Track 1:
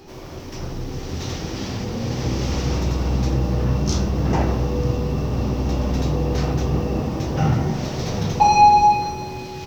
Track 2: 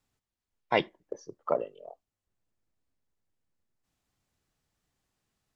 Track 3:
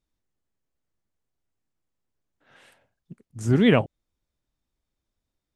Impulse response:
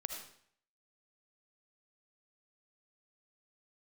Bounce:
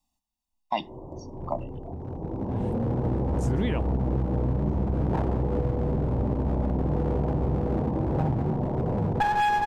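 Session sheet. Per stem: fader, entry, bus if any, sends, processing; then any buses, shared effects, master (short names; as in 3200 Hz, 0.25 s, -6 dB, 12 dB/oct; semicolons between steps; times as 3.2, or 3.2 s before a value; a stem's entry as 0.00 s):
+1.0 dB, 0.80 s, no send, elliptic low-pass 970 Hz, stop band 40 dB; one-sided clip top -25 dBFS, bottom -9 dBFS; auto duck -9 dB, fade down 2.00 s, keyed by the second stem
0.0 dB, 0.00 s, no send, fixed phaser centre 440 Hz, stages 6; comb 1.1 ms, depth 84%
-3.0 dB, 0.00 s, no send, limiter -14 dBFS, peak gain reduction 8 dB; expander -57 dBFS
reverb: off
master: compressor, threshold -21 dBFS, peak gain reduction 8 dB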